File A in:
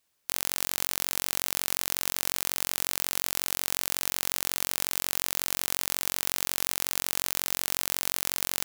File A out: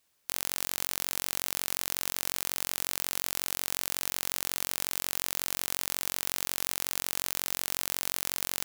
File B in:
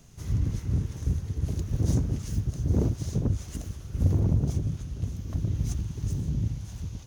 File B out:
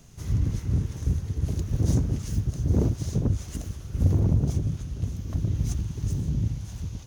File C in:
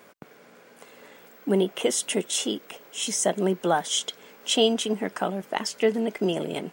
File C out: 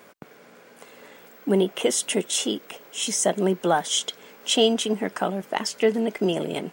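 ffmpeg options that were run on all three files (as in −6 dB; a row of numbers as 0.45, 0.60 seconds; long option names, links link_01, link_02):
-af "asoftclip=type=tanh:threshold=-5dB,volume=2dB"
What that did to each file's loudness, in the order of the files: −2.5, +2.0, +2.0 LU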